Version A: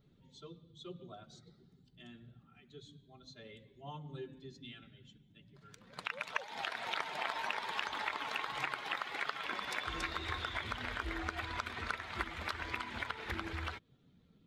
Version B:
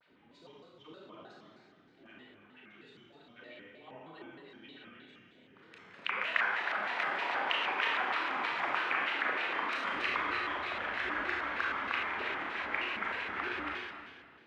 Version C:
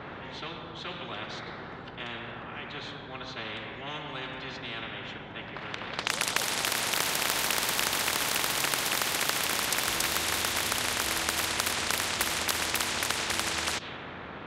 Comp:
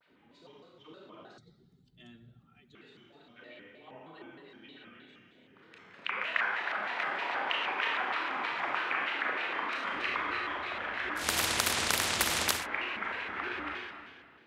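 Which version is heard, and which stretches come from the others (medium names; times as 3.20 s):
B
1.38–2.75 s: from A
11.23–12.59 s: from C, crossfade 0.16 s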